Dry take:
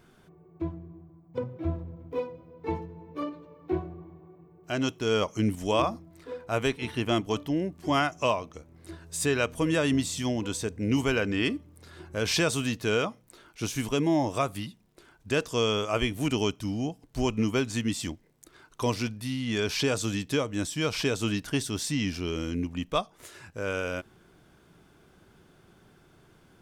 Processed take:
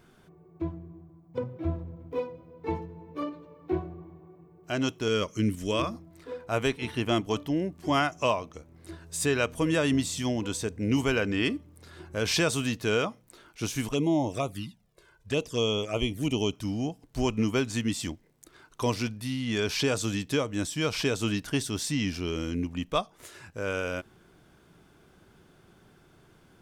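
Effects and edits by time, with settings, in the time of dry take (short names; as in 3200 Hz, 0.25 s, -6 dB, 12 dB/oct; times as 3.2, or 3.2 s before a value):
5.08–5.94 bell 790 Hz -15 dB 0.51 oct
13.89–16.53 envelope flanger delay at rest 2.1 ms, full sweep at -23 dBFS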